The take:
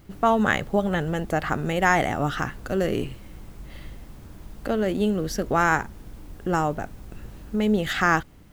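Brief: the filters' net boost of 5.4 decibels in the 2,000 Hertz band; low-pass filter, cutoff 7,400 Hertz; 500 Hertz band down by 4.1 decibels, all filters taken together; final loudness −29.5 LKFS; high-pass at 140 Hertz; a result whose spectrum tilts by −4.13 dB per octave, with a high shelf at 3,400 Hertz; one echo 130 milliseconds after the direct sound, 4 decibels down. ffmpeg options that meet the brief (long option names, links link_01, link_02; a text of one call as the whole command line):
ffmpeg -i in.wav -af "highpass=140,lowpass=7400,equalizer=frequency=500:width_type=o:gain=-6,equalizer=frequency=2000:width_type=o:gain=5.5,highshelf=frequency=3400:gain=7,aecho=1:1:130:0.631,volume=-8dB" out.wav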